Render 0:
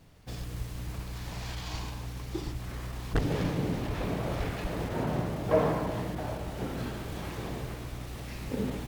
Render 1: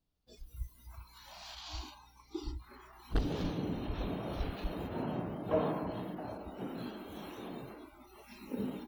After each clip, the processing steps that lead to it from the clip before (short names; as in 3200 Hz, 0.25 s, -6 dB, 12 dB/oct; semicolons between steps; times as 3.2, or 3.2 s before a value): spectral noise reduction 22 dB; ten-band EQ 125 Hz -11 dB, 500 Hz -6 dB, 1000 Hz -3 dB, 2000 Hz -11 dB, 4000 Hz +3 dB, 8000 Hz -8 dB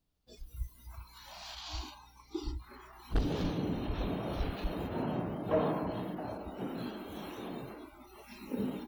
soft clip -21 dBFS, distortion -23 dB; gain +2.5 dB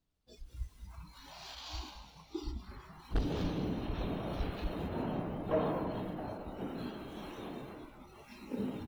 median filter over 3 samples; on a send: frequency-shifting echo 0.208 s, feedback 49%, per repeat -110 Hz, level -11.5 dB; on the sum: gain -2 dB